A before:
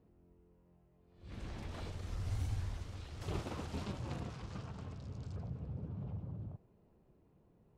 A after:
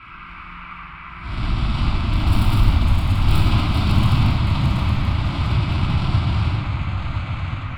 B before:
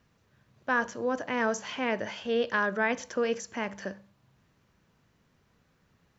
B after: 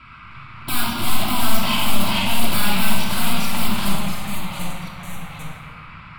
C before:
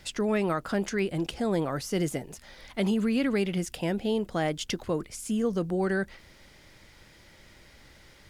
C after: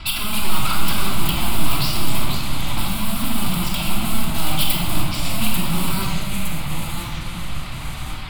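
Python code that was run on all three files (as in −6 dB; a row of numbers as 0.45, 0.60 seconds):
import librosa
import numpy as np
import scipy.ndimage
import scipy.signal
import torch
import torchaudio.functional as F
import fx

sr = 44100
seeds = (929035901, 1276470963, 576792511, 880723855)

p1 = fx.halfwave_hold(x, sr)
p2 = scipy.signal.sosfilt(scipy.signal.butter(4, 6200.0, 'lowpass', fs=sr, output='sos'), p1)
p3 = fx.low_shelf(p2, sr, hz=96.0, db=3.5)
p4 = fx.over_compress(p3, sr, threshold_db=-27.0, ratio=-0.5)
p5 = p3 + F.gain(torch.from_numpy(p4), 0.0).numpy()
p6 = 10.0 ** (-23.5 / 20.0) * (np.abs((p5 / 10.0 ** (-23.5 / 20.0) + 3.0) % 4.0 - 2.0) - 1.0)
p7 = fx.high_shelf(p6, sr, hz=3300.0, db=11.5)
p8 = fx.dmg_noise_band(p7, sr, seeds[0], low_hz=1100.0, high_hz=2400.0, level_db=-45.0)
p9 = fx.fixed_phaser(p8, sr, hz=1800.0, stages=6)
p10 = fx.room_shoebox(p9, sr, seeds[1], volume_m3=1400.0, walls='mixed', distance_m=2.9)
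p11 = fx.echo_pitch(p10, sr, ms=267, semitones=-2, count=2, db_per_echo=-6.0)
y = librosa.util.normalize(p11) * 10.0 ** (-3 / 20.0)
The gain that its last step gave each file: +5.0, +1.0, +0.5 decibels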